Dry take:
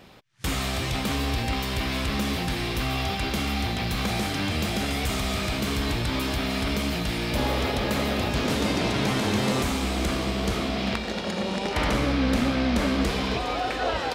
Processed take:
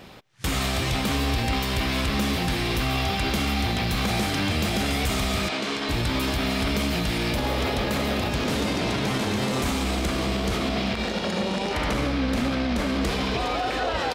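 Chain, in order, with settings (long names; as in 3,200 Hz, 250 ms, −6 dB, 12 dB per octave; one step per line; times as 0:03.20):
brickwall limiter −22 dBFS, peak gain reduction 11 dB
0:05.48–0:05.89: band-pass filter 290–6,100 Hz
far-end echo of a speakerphone 160 ms, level −29 dB
level +5 dB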